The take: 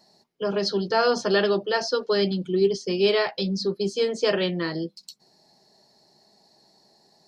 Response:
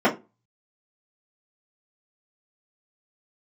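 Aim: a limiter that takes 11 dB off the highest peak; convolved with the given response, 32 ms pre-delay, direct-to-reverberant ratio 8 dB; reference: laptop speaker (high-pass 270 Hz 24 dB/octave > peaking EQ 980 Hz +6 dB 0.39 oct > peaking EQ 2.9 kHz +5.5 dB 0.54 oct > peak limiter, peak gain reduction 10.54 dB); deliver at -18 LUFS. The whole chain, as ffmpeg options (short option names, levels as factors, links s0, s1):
-filter_complex "[0:a]alimiter=limit=0.0944:level=0:latency=1,asplit=2[s0][s1];[1:a]atrim=start_sample=2205,adelay=32[s2];[s1][s2]afir=irnorm=-1:irlink=0,volume=0.0447[s3];[s0][s3]amix=inputs=2:normalize=0,highpass=f=270:w=0.5412,highpass=f=270:w=1.3066,equalizer=f=980:t=o:w=0.39:g=6,equalizer=f=2900:t=o:w=0.54:g=5.5,volume=6.31,alimiter=limit=0.335:level=0:latency=1"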